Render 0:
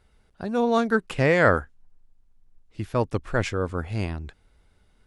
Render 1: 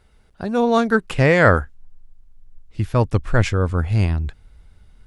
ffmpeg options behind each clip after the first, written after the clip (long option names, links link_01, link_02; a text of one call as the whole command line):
ffmpeg -i in.wav -af "asubboost=boost=2.5:cutoff=190,volume=5dB" out.wav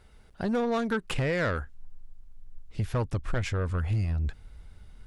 ffmpeg -i in.wav -af "acompressor=threshold=-20dB:ratio=12,asoftclip=type=tanh:threshold=-21.5dB" out.wav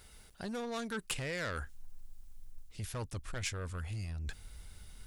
ffmpeg -i in.wav -af "areverse,acompressor=threshold=-35dB:ratio=6,areverse,crystalizer=i=5:c=0,volume=-3dB" out.wav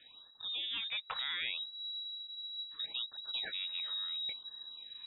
ffmpeg -i in.wav -af "lowpass=frequency=3300:width_type=q:width=0.5098,lowpass=frequency=3300:width_type=q:width=0.6013,lowpass=frequency=3300:width_type=q:width=0.9,lowpass=frequency=3300:width_type=q:width=2.563,afreqshift=-3900,afftfilt=real='re*(1-between(b*sr/1024,280*pow(2700/280,0.5+0.5*sin(2*PI*0.71*pts/sr))/1.41,280*pow(2700/280,0.5+0.5*sin(2*PI*0.71*pts/sr))*1.41))':imag='im*(1-between(b*sr/1024,280*pow(2700/280,0.5+0.5*sin(2*PI*0.71*pts/sr))/1.41,280*pow(2700/280,0.5+0.5*sin(2*PI*0.71*pts/sr))*1.41))':win_size=1024:overlap=0.75" out.wav